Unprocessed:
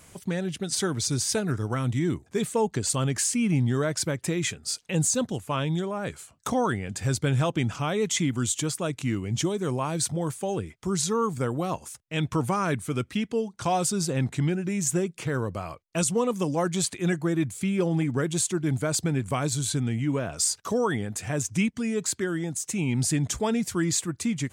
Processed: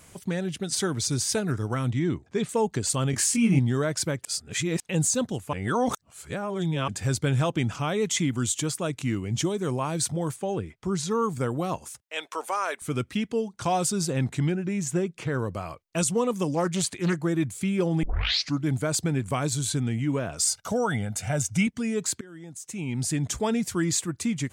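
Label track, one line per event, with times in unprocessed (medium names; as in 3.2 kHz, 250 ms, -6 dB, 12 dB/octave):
1.900000	2.490000	low-pass 5.2 kHz
3.110000	3.590000	doubling 22 ms -2 dB
4.250000	4.800000	reverse
5.530000	6.880000	reverse
10.360000	11.110000	treble shelf 5.8 kHz -10.5 dB
12.010000	12.820000	high-pass 490 Hz 24 dB/octave
14.510000	15.380000	treble shelf 5.6 kHz -> 8 kHz -11 dB
16.550000	17.250000	loudspeaker Doppler distortion depth 0.24 ms
18.030000	18.030000	tape start 0.63 s
20.470000	21.670000	comb 1.4 ms
22.210000	23.420000	fade in linear, from -22.5 dB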